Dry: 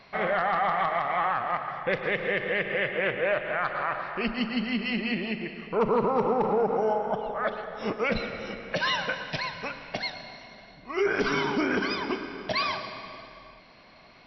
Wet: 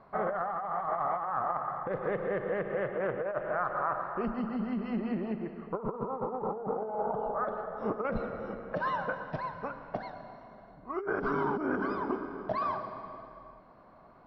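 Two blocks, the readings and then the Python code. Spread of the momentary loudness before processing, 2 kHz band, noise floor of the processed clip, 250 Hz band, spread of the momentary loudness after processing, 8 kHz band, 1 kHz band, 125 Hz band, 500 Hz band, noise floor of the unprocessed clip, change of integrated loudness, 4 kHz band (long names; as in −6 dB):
10 LU, −11.0 dB, −56 dBFS, −4.0 dB, 9 LU, can't be measured, −4.0 dB, −3.5 dB, −5.0 dB, −53 dBFS, −6.0 dB, below −20 dB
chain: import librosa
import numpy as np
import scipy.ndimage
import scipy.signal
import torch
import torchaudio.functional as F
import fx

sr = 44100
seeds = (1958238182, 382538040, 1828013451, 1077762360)

y = fx.curve_eq(x, sr, hz=(220.0, 1300.0, 2300.0), db=(0, 2, -19))
y = fx.over_compress(y, sr, threshold_db=-27.0, ratio=-0.5)
y = fx.lowpass(y, sr, hz=3700.0, slope=6)
y = y * 10.0 ** (-3.5 / 20.0)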